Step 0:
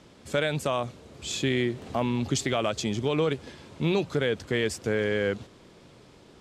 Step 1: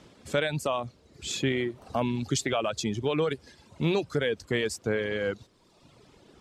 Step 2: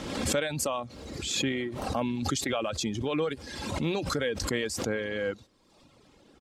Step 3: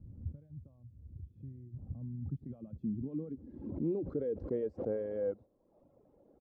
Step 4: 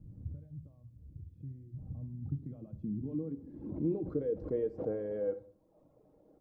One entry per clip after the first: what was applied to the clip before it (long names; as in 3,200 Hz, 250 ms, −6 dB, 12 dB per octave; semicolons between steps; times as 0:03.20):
reverb reduction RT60 1.1 s
comb filter 3.7 ms, depth 31%; background raised ahead of every attack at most 39 dB per second; level −3 dB
low-pass filter sweep 100 Hz → 600 Hz, 0:01.42–0:04.99; level −9 dB
convolution reverb RT60 0.55 s, pre-delay 6 ms, DRR 7.5 dB